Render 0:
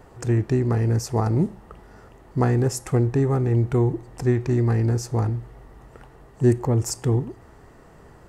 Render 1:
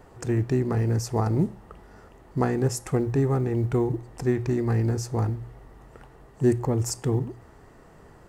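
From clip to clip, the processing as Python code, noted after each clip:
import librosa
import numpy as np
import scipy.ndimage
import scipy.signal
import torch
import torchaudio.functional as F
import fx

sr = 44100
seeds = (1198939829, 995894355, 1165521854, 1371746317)

y = fx.hum_notches(x, sr, base_hz=60, count=2)
y = fx.quant_float(y, sr, bits=6)
y = y * librosa.db_to_amplitude(-2.0)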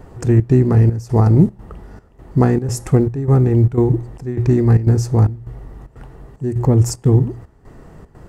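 y = fx.step_gate(x, sr, bpm=151, pattern='xxxx.xxxx..', floor_db=-12.0, edge_ms=4.5)
y = fx.low_shelf(y, sr, hz=340.0, db=10.0)
y = y * librosa.db_to_amplitude(4.5)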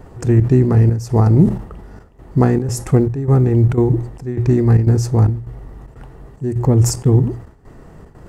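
y = fx.sustainer(x, sr, db_per_s=110.0)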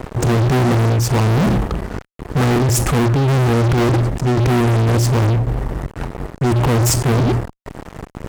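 y = fx.fuzz(x, sr, gain_db=31.0, gate_db=-37.0)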